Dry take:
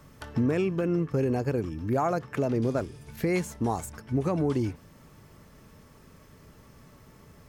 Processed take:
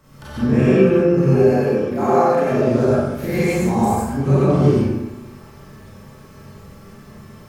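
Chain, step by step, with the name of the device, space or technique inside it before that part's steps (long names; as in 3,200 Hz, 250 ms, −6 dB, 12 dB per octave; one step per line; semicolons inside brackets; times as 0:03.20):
0:01.34–0:02.45: high-pass filter 210 Hz 12 dB per octave
four-comb reverb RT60 0.46 s, combs from 29 ms, DRR −6.5 dB
bathroom (convolution reverb RT60 1.1 s, pre-delay 84 ms, DRR −5.5 dB)
level −3 dB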